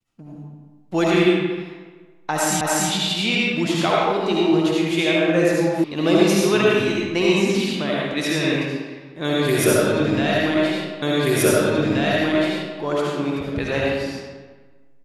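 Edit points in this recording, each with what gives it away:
2.61 repeat of the last 0.29 s
5.84 sound cut off
11.02 repeat of the last 1.78 s

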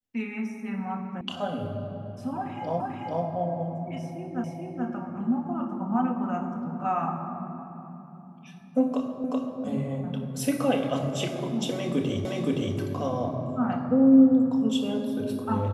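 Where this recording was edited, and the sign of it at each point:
1.21 sound cut off
2.8 repeat of the last 0.44 s
4.44 repeat of the last 0.43 s
9.24 repeat of the last 0.38 s
12.25 repeat of the last 0.52 s

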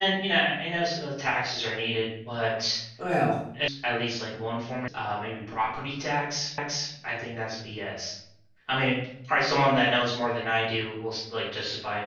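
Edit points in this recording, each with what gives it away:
3.68 sound cut off
4.88 sound cut off
6.58 repeat of the last 0.38 s

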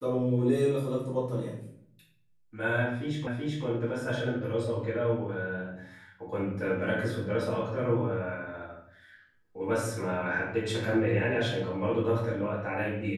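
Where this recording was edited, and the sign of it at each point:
3.27 repeat of the last 0.38 s

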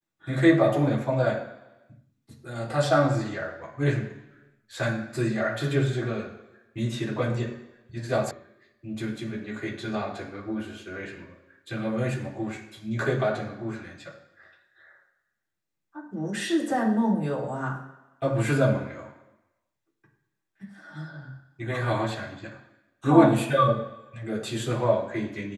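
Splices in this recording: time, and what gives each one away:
8.31 sound cut off

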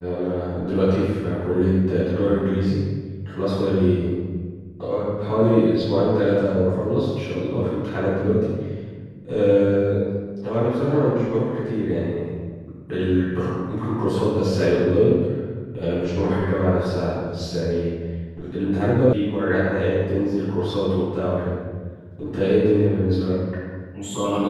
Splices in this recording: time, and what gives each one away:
19.13 sound cut off

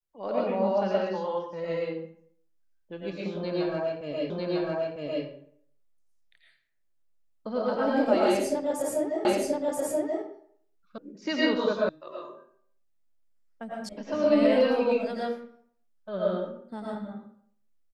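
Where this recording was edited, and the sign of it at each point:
4.3 repeat of the last 0.95 s
9.25 repeat of the last 0.98 s
10.98 sound cut off
11.89 sound cut off
13.89 sound cut off

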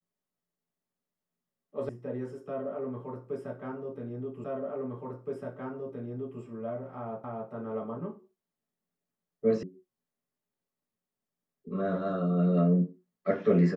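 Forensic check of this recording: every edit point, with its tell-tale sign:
1.89 sound cut off
4.44 repeat of the last 1.97 s
7.24 repeat of the last 0.27 s
9.63 sound cut off

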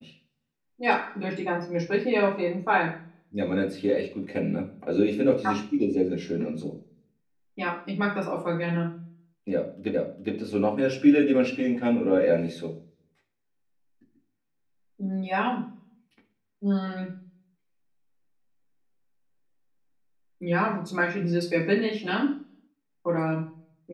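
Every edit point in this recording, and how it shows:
9.94 repeat of the last 0.41 s

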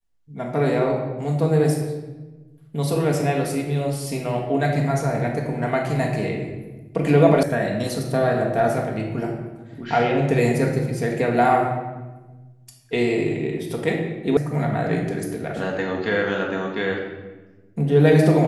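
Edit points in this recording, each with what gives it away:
7.43 sound cut off
14.37 sound cut off

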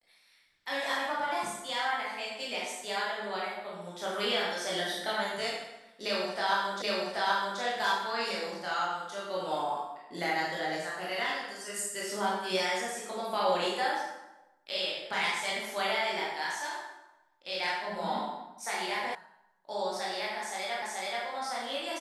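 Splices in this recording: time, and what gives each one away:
6.82 repeat of the last 0.78 s
19.15 sound cut off
20.82 repeat of the last 0.43 s

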